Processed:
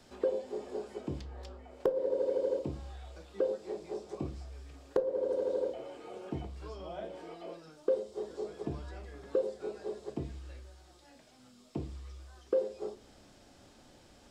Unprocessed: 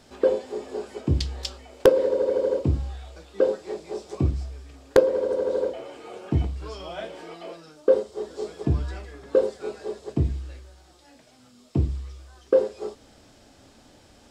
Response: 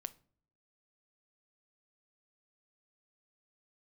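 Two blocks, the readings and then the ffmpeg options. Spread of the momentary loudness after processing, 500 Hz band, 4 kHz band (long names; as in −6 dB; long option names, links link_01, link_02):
16 LU, −10.0 dB, −15.0 dB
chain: -filter_complex "[0:a]acrossover=split=390|880|2000[link_01][link_02][link_03][link_04];[link_01]acompressor=threshold=-36dB:ratio=4[link_05];[link_02]acompressor=threshold=-24dB:ratio=4[link_06];[link_03]acompressor=threshold=-55dB:ratio=4[link_07];[link_04]acompressor=threshold=-56dB:ratio=4[link_08];[link_05][link_06][link_07][link_08]amix=inputs=4:normalize=0[link_09];[1:a]atrim=start_sample=2205,asetrate=52920,aresample=44100[link_10];[link_09][link_10]afir=irnorm=-1:irlink=0"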